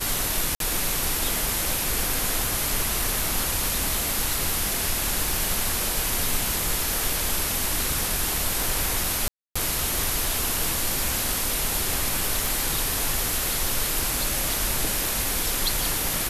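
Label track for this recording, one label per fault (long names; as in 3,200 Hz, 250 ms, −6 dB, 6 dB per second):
0.550000	0.600000	drop-out 52 ms
9.280000	9.550000	drop-out 275 ms
12.460000	12.460000	click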